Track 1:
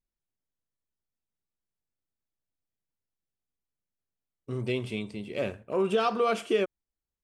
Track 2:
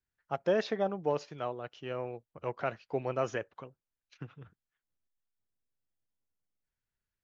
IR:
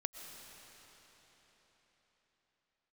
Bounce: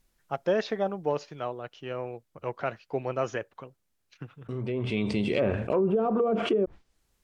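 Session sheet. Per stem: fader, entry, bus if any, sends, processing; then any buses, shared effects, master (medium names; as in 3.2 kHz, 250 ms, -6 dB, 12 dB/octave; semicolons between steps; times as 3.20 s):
+1.0 dB, 0.00 s, no send, low-pass that closes with the level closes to 430 Hz, closed at -22 dBFS; gate with hold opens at -35 dBFS; level flattener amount 70%; auto duck -9 dB, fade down 1.75 s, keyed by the second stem
+2.5 dB, 0.00 s, no send, none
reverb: none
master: none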